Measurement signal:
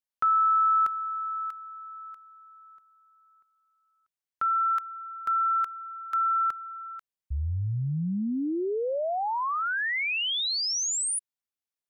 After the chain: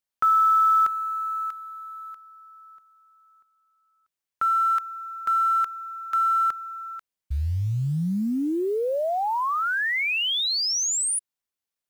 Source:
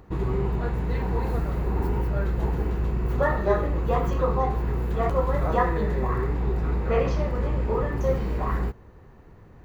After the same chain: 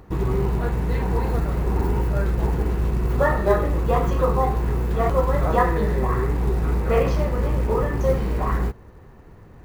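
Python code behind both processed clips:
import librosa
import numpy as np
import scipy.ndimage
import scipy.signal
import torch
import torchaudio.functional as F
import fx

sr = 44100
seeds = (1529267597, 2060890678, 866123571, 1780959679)

y = fx.quant_float(x, sr, bits=4)
y = y * 10.0 ** (3.5 / 20.0)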